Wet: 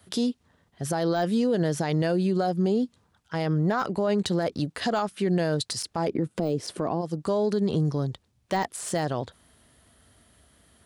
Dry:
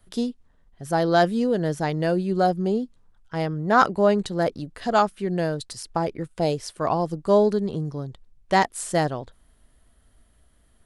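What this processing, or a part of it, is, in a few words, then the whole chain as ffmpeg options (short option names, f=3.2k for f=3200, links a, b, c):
broadcast voice chain: -filter_complex "[0:a]asplit=3[a][b][c];[a]afade=t=out:st=6.07:d=0.02[d];[b]equalizer=f=270:t=o:w=2.8:g=15,afade=t=in:st=6.07:d=0.02,afade=t=out:st=7:d=0.02[e];[c]afade=t=in:st=7:d=0.02[f];[d][e][f]amix=inputs=3:normalize=0,highpass=f=74:w=0.5412,highpass=f=74:w=1.3066,deesser=0.7,acompressor=threshold=-23dB:ratio=4,equalizer=f=4.4k:t=o:w=1.9:g=3.5,alimiter=limit=-22.5dB:level=0:latency=1:release=49,volume=5.5dB"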